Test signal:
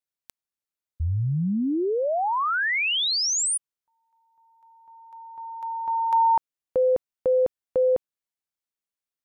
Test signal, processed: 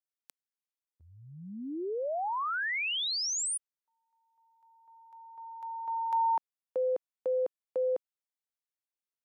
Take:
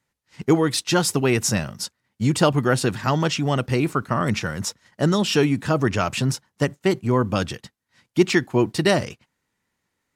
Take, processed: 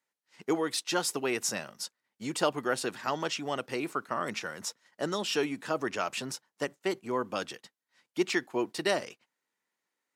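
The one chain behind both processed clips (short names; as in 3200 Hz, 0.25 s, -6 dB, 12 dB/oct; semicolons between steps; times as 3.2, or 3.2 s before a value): HPF 350 Hz 12 dB/oct; gain -8 dB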